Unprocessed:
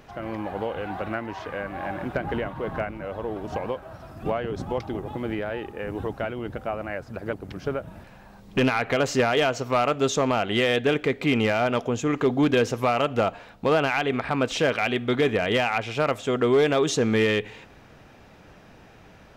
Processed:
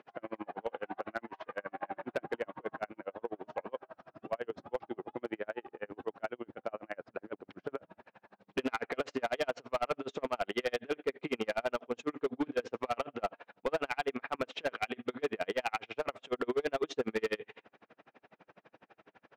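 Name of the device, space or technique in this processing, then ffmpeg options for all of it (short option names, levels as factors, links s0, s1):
helicopter radio: -af "highpass=300,lowpass=2700,aeval=exprs='val(0)*pow(10,-39*(0.5-0.5*cos(2*PI*12*n/s))/20)':c=same,asoftclip=type=hard:threshold=0.0668,volume=0.841"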